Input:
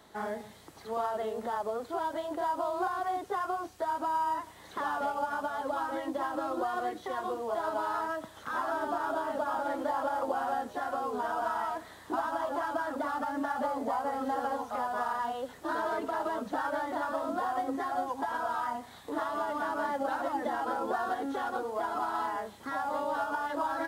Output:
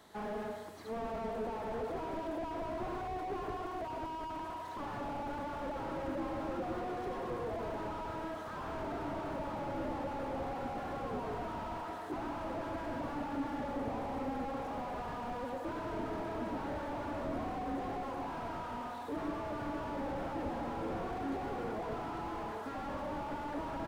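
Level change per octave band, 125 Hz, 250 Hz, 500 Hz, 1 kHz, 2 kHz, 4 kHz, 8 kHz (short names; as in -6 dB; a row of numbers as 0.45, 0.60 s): +11.5, -1.0, -5.0, -8.5, -9.0, -5.0, -8.0 dB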